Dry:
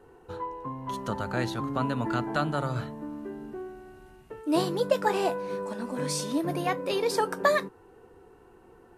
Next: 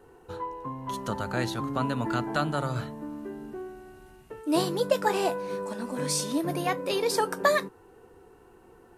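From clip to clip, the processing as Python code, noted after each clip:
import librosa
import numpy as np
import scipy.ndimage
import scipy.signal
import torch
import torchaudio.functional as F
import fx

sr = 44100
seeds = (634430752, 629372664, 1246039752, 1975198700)

y = fx.high_shelf(x, sr, hz=4700.0, db=5.5)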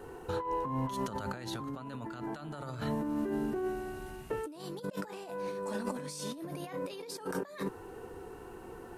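y = fx.over_compress(x, sr, threshold_db=-39.0, ratio=-1.0)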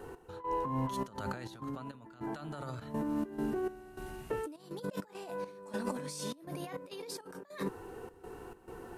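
y = fx.step_gate(x, sr, bpm=102, pattern='x..xxxx.xx.x', floor_db=-12.0, edge_ms=4.5)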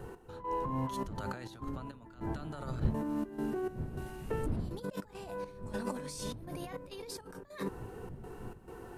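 y = fx.dmg_wind(x, sr, seeds[0], corner_hz=160.0, level_db=-42.0)
y = F.gain(torch.from_numpy(y), -1.0).numpy()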